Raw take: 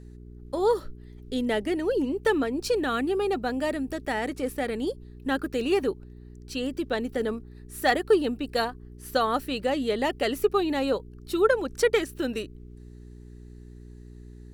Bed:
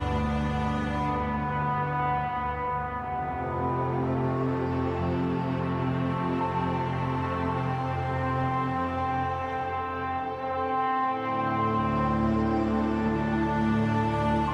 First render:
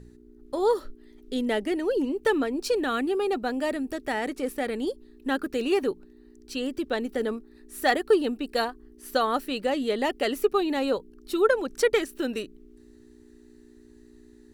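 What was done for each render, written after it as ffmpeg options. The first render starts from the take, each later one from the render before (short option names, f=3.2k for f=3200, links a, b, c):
-af "bandreject=f=60:t=h:w=4,bandreject=f=120:t=h:w=4,bandreject=f=180:t=h:w=4"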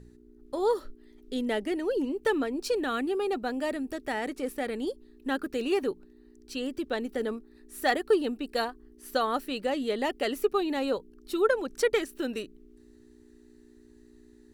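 -af "volume=-3dB"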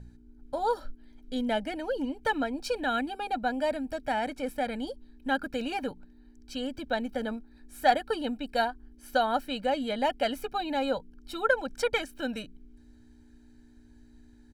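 -af "highshelf=f=5.9k:g=-9.5,aecho=1:1:1.3:0.95"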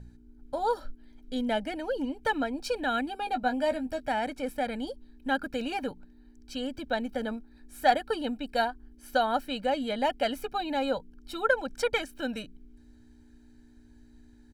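-filter_complex "[0:a]asettb=1/sr,asplit=3[a][b][c];[a]atrim=end=3.204[d];[b]atrim=start=3.2:end=4.06,asetpts=PTS-STARTPTS,afade=t=in:d=0.004:c=qsin,afade=t=out:st=0.856:d=0.004:c=qsin,asplit=2[e][f];[f]adelay=16,volume=-8dB[g];[e][g]amix=inputs=2:normalize=0,atrim=end_sample=37926[h];[c]atrim=start=4.056[i];[d][h]acrossfade=d=0.004:c1=hsin:c2=qsin[j];[j][i]acrossfade=d=0.004:c1=qsin:c2=hsin"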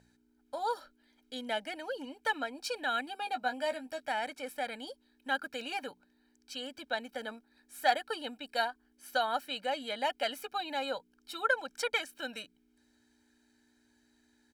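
-af "highpass=f=1.1k:p=1"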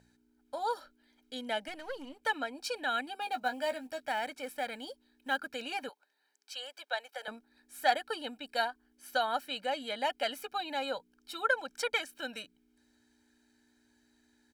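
-filter_complex "[0:a]asettb=1/sr,asplit=3[a][b][c];[a]atrim=end=1.684[d];[b]atrim=start=1.68:end=2.23,asetpts=PTS-STARTPTS,afade=t=in:d=0.004:c=qsin,afade=t=out:st=0.546:d=0.004:c=qsin,aeval=exprs='if(lt(val(0),0),0.447*val(0),val(0))':c=same[e];[c]atrim=start=2.226[f];[d][e]acrossfade=d=0.004:c1=hsin:c2=qsin[g];[g][f]acrossfade=d=0.004:c1=qsin:c2=hsin,asettb=1/sr,asplit=3[h][i][j];[h]atrim=end=3.214[k];[i]atrim=start=3.21:end=5.39,asetpts=PTS-STARTPTS,afade=t=in:d=0.004:c=qsin,afade=t=out:st=2.176:d=0.004:c=qsin,acrusher=bits=7:mode=log:mix=0:aa=0.000001[l];[j]atrim=start=5.386[m];[k][l]acrossfade=d=0.004:c1=hsin:c2=qsin[n];[n][m]acrossfade=d=0.004:c1=qsin:c2=hsin,asettb=1/sr,asplit=3[o][p][q];[o]atrim=end=5.894[r];[p]atrim=start=5.89:end=7.28,asetpts=PTS-STARTPTS,afade=t=in:d=0.004:c=qsin,afade=t=out:st=1.386:d=0.004:c=qsin,highpass=f=550:w=0.5412,highpass=f=550:w=1.3066[s];[q]atrim=start=7.276[t];[r][s]acrossfade=d=0.004:c1=hsin:c2=qsin[u];[u][t]acrossfade=d=0.004:c1=qsin:c2=hsin"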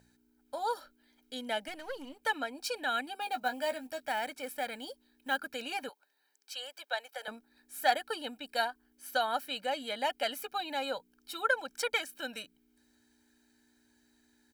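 -af "highshelf=f=12k:g=11.5"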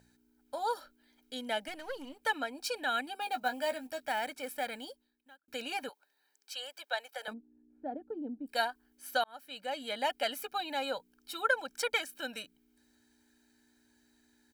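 -filter_complex "[0:a]asplit=3[a][b][c];[a]afade=t=out:st=7.32:d=0.02[d];[b]lowpass=f=310:t=q:w=2.4,afade=t=in:st=7.32:d=0.02,afade=t=out:st=8.46:d=0.02[e];[c]afade=t=in:st=8.46:d=0.02[f];[d][e][f]amix=inputs=3:normalize=0,asplit=3[g][h][i];[g]atrim=end=5.48,asetpts=PTS-STARTPTS,afade=t=out:st=4.79:d=0.69:c=qua[j];[h]atrim=start=5.48:end=9.24,asetpts=PTS-STARTPTS,afade=t=in:d=0.004:c=hsin,afade=t=out:st=3.756:d=0.004:c=hsin[k];[i]atrim=start=9.24,asetpts=PTS-STARTPTS,afade=t=in:d=0.7[l];[j][k][l]concat=n=3:v=0:a=1"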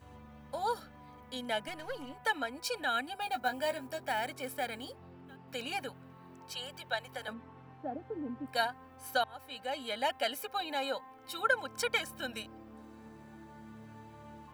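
-filter_complex "[1:a]volume=-26dB[a];[0:a][a]amix=inputs=2:normalize=0"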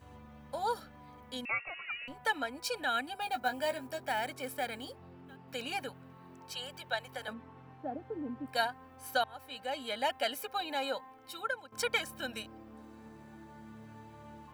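-filter_complex "[0:a]asettb=1/sr,asplit=3[a][b][c];[a]atrim=end=1.454[d];[b]atrim=start=1.45:end=2.08,asetpts=PTS-STARTPTS,afade=t=in:d=0.004:c=qsin,afade=t=out:st=0.626:d=0.004:c=qsin,lowpass=f=2.5k:t=q:w=0.5098,lowpass=f=2.5k:t=q:w=0.6013,lowpass=f=2.5k:t=q:w=0.9,lowpass=f=2.5k:t=q:w=2.563,afreqshift=-2900[e];[c]atrim=start=2.076[f];[d][e]acrossfade=d=0.004:c1=hsin:c2=qsin[g];[g][f]acrossfade=d=0.004:c1=qsin:c2=hsin,asplit=2[h][i];[h]atrim=end=11.72,asetpts=PTS-STARTPTS,afade=t=out:st=11.05:d=0.67:silence=0.177828[j];[i]atrim=start=11.72,asetpts=PTS-STARTPTS,afade=t=in:d=0.004:c=hsin:silence=0.177828[k];[j][k]concat=n=2:v=0:a=1"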